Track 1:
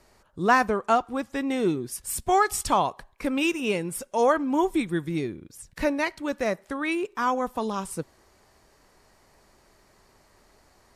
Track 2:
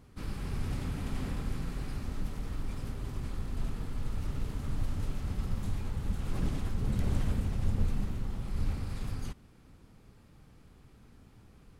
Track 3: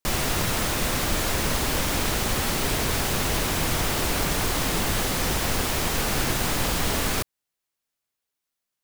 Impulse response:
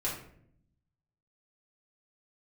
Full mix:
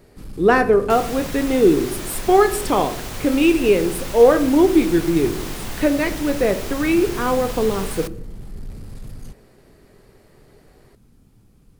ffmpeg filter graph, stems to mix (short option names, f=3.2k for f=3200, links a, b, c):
-filter_complex "[0:a]equalizer=f=400:t=o:w=0.67:g=11,equalizer=f=1k:t=o:w=0.67:g=-6,equalizer=f=6.3k:t=o:w=0.67:g=-9,volume=2dB,asplit=2[a][b];[b]volume=-10.5dB[c];[1:a]tiltshelf=f=710:g=8,asoftclip=type=tanh:threshold=-23.5dB,crystalizer=i=5:c=0,volume=-3dB[d];[2:a]adelay=850,volume=-7.5dB,asplit=2[e][f];[f]volume=-22.5dB[g];[3:a]atrim=start_sample=2205[h];[c][g]amix=inputs=2:normalize=0[i];[i][h]afir=irnorm=-1:irlink=0[j];[a][d][e][j]amix=inputs=4:normalize=0,equalizer=f=75:w=2.6:g=-7.5"